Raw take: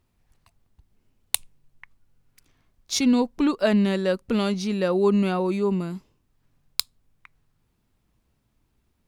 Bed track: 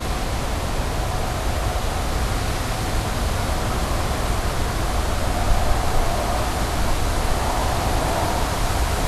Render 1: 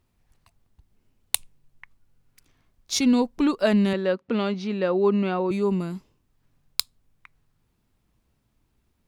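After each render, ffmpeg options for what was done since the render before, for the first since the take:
ffmpeg -i in.wav -filter_complex "[0:a]asettb=1/sr,asplit=3[link_01][link_02][link_03];[link_01]atrim=end=3.934[link_04];[link_02]atrim=start=3.93:end=5.51,asetpts=PTS-STARTPTS,afade=type=in:duration=0.004:curve=qsin,afade=type=out:start_time=1.576:duration=0.004:curve=qsin,highpass=190,lowpass=3300[link_05];[link_03]atrim=start=5.506[link_06];[link_04][link_05]acrossfade=duration=0.004:curve1=hsin:curve2=qsin[link_07];[link_07][link_06]acrossfade=duration=0.004:curve1=qsin:curve2=hsin" out.wav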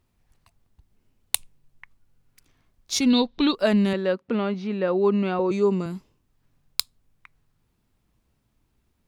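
ffmpeg -i in.wav -filter_complex "[0:a]asettb=1/sr,asplit=3[link_01][link_02][link_03];[link_01]atrim=end=3.104[link_04];[link_02]atrim=start=3.1:end=3.55,asetpts=PTS-STARTPTS,afade=type=in:duration=0.004:curve=qsin,afade=type=out:start_time=0.446:duration=0.004:curve=qsin,lowpass=frequency=3800:width_type=q:width=7.3[link_05];[link_03]atrim=start=3.546[link_06];[link_04][link_05]acrossfade=duration=0.004:curve1=hsin:curve2=qsin[link_07];[link_07][link_06]acrossfade=duration=0.004:curve1=qsin:curve2=hsin,asettb=1/sr,asplit=3[link_08][link_09][link_10];[link_08]atrim=end=4.304[link_11];[link_09]atrim=start=4.3:end=4.88,asetpts=PTS-STARTPTS,afade=type=in:duration=0.004:curve=qsin,afade=type=out:start_time=0.576:duration=0.004:curve=qsin,acrossover=split=2800[link_12][link_13];[link_13]acompressor=threshold=-49dB:ratio=4:attack=1:release=60[link_14];[link_12][link_14]amix=inputs=2:normalize=0[link_15];[link_10]atrim=start=4.876[link_16];[link_11][link_15]acrossfade=duration=0.004:curve1=hsin:curve2=qsin[link_17];[link_17][link_16]acrossfade=duration=0.004:curve1=qsin:curve2=hsin,asettb=1/sr,asplit=3[link_18][link_19][link_20];[link_18]atrim=end=5.394[link_21];[link_19]atrim=start=5.39:end=5.86,asetpts=PTS-STARTPTS,afade=type=in:duration=0.004:curve=qsin,afade=type=out:start_time=0.466:duration=0.004:curve=qsin,highpass=120,equalizer=frequency=460:width_type=q:width=4:gain=8,equalizer=frequency=1200:width_type=q:width=4:gain=3,equalizer=frequency=6100:width_type=q:width=4:gain=10,lowpass=frequency=8100:width=0.5412,lowpass=frequency=8100:width=1.3066[link_22];[link_20]atrim=start=5.856[link_23];[link_21][link_22]acrossfade=duration=0.004:curve1=hsin:curve2=qsin[link_24];[link_24][link_23]acrossfade=duration=0.004:curve1=qsin:curve2=hsin" out.wav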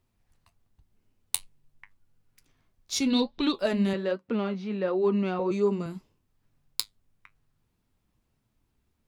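ffmpeg -i in.wav -filter_complex "[0:a]flanger=delay=7.3:depth=5:regen=-60:speed=1.2:shape=triangular,acrossover=split=710|3400[link_01][link_02][link_03];[link_02]asoftclip=type=tanh:threshold=-27.5dB[link_04];[link_01][link_04][link_03]amix=inputs=3:normalize=0" out.wav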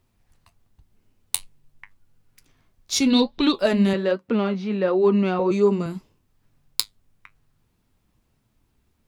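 ffmpeg -i in.wav -af "volume=6.5dB,alimiter=limit=-1dB:level=0:latency=1" out.wav

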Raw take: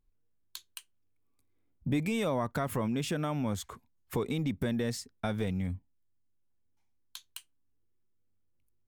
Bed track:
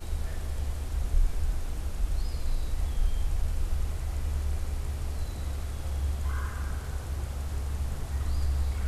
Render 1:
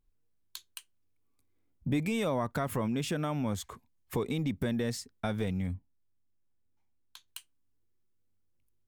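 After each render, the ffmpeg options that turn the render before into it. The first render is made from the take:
ffmpeg -i in.wav -filter_complex "[0:a]asettb=1/sr,asplit=3[link_01][link_02][link_03];[link_01]atrim=end=3.544[link_04];[link_02]atrim=start=3.54:end=4.52,asetpts=PTS-STARTPTS,afade=type=in:duration=0.004:curve=qsin,afade=type=out:start_time=0.976:duration=0.004:curve=qsin,bandreject=frequency=1400:width=12[link_05];[link_03]atrim=start=4.516[link_06];[link_04][link_05]acrossfade=duration=0.004:curve1=hsin:curve2=qsin[link_07];[link_07][link_06]acrossfade=duration=0.004:curve1=qsin:curve2=hsin,asettb=1/sr,asplit=3[link_08][link_09][link_10];[link_08]atrim=end=5.744[link_11];[link_09]atrim=start=5.74:end=7.28,asetpts=PTS-STARTPTS,afade=type=in:duration=0.004:curve=qsin,afade=type=out:start_time=1.536:duration=0.004:curve=qsin,highshelf=frequency=2900:gain=-9.5[link_12];[link_10]atrim=start=7.276[link_13];[link_11][link_12]acrossfade=duration=0.004:curve1=hsin:curve2=qsin[link_14];[link_14][link_13]acrossfade=duration=0.004:curve1=qsin:curve2=hsin" out.wav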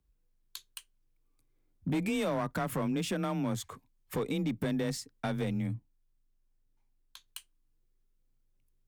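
ffmpeg -i in.wav -af "afreqshift=22,volume=25.5dB,asoftclip=hard,volume=-25.5dB" out.wav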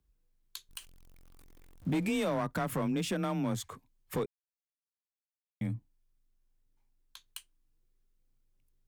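ffmpeg -i in.wav -filter_complex "[0:a]asettb=1/sr,asplit=3[link_01][link_02][link_03];[link_01]atrim=end=0.694[link_04];[link_02]atrim=start=0.69:end=2.2,asetpts=PTS-STARTPTS,afade=type=in:duration=0.004:curve=qsin,afade=type=out:start_time=1.506:duration=0.004:curve=qsin,aeval=exprs='val(0)+0.5*0.00282*sgn(val(0))':channel_layout=same[link_05];[link_03]atrim=start=2.196[link_06];[link_04][link_05]acrossfade=duration=0.004:curve1=hsin:curve2=qsin[link_07];[link_07][link_06]acrossfade=duration=0.004:curve1=qsin:curve2=hsin,asplit=3[link_08][link_09][link_10];[link_08]atrim=end=4.26,asetpts=PTS-STARTPTS,afade=type=out:start_time=4.256:duration=0.004:curve=hsin[link_11];[link_09]atrim=start=4.26:end=5.61,asetpts=PTS-STARTPTS,volume=0[link_12];[link_10]atrim=start=5.61,asetpts=PTS-STARTPTS,afade=type=in:duration=0.004:curve=hsin[link_13];[link_11][link_12][link_13]concat=n=3:v=0:a=1" out.wav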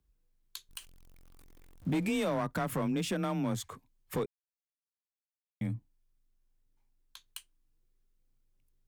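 ffmpeg -i in.wav -af anull out.wav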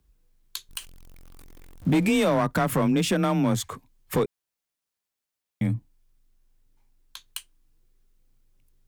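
ffmpeg -i in.wav -af "volume=9.5dB" out.wav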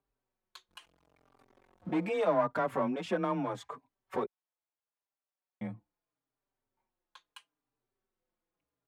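ffmpeg -i in.wav -filter_complex "[0:a]bandpass=frequency=790:width_type=q:width=1:csg=0,asplit=2[link_01][link_02];[link_02]adelay=4.6,afreqshift=-0.78[link_03];[link_01][link_03]amix=inputs=2:normalize=1" out.wav

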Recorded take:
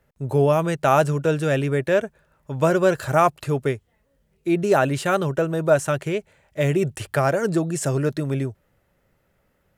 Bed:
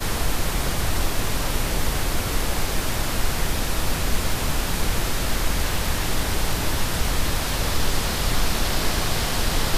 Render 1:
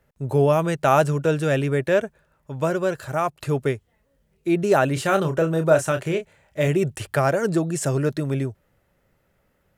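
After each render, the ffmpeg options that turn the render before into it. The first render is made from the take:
ffmpeg -i in.wav -filter_complex "[0:a]asettb=1/sr,asplit=3[link_01][link_02][link_03];[link_01]atrim=end=4.934[link_04];[link_02]atrim=start=4.93:end=6.68,asetpts=PTS-STARTPTS,afade=type=in:duration=0.004:curve=qsin,afade=type=out:start_time=1.746:duration=0.004:curve=qsin,asplit=2[link_05][link_06];[link_06]adelay=31,volume=-8dB[link_07];[link_05][link_07]amix=inputs=2:normalize=0,atrim=end_sample=77175[link_08];[link_03]atrim=start=6.676[link_09];[link_04][link_08]acrossfade=duration=0.004:curve1=hsin:curve2=qsin[link_10];[link_10][link_09]acrossfade=duration=0.004:curve1=qsin:curve2=hsin,asplit=2[link_11][link_12];[link_11]atrim=end=3.4,asetpts=PTS-STARTPTS,afade=type=out:start_time=2.04:duration=1.36:curve=qua:silence=0.473151[link_13];[link_12]atrim=start=3.4,asetpts=PTS-STARTPTS,afade=type=in:duration=0.004:curve=hsin:silence=0.473151[link_14];[link_13][link_14]concat=n=2:v=0:a=1" out.wav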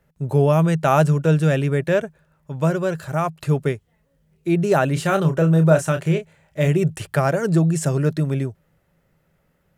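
ffmpeg -i in.wav -af "equalizer=frequency=160:width_type=o:width=0.24:gain=11" out.wav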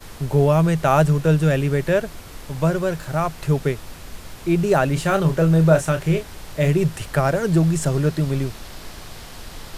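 ffmpeg -i in.wav -i bed.wav -filter_complex "[1:a]volume=-14.5dB[link_01];[0:a][link_01]amix=inputs=2:normalize=0" out.wav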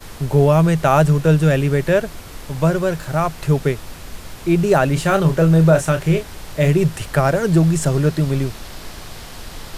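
ffmpeg -i in.wav -af "volume=3dB,alimiter=limit=-3dB:level=0:latency=1" out.wav

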